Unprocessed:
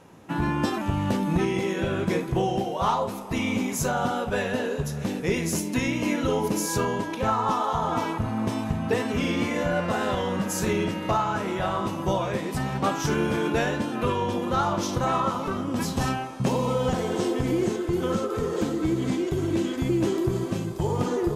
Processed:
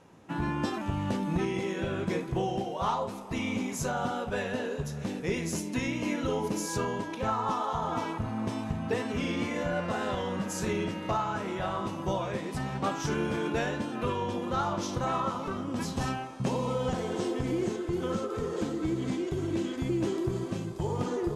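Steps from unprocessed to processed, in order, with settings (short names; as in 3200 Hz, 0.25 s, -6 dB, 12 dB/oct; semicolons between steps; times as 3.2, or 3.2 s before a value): LPF 9900 Hz 12 dB/oct; gain -5.5 dB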